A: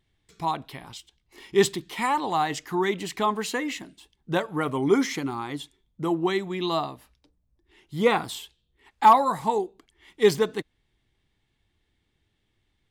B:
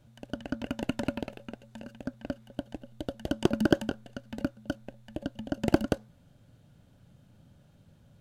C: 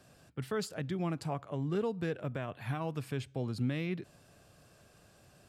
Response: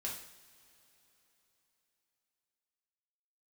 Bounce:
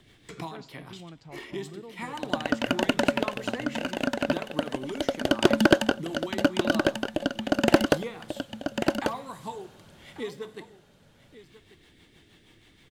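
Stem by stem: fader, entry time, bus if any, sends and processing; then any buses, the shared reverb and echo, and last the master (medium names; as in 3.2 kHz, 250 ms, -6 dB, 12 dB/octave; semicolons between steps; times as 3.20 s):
-12.0 dB, 0.00 s, send -7 dB, echo send -14 dB, band-stop 840 Hz, Q 18; rotary cabinet horn 6.3 Hz; three bands compressed up and down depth 100%
+1.5 dB, 2.00 s, no send, echo send -6 dB, overdrive pedal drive 19 dB, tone 7.6 kHz, clips at -4.5 dBFS
-11.0 dB, 0.00 s, no send, no echo send, inverse Chebyshev low-pass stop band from 11 kHz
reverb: on, pre-delay 3 ms
echo: delay 1141 ms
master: none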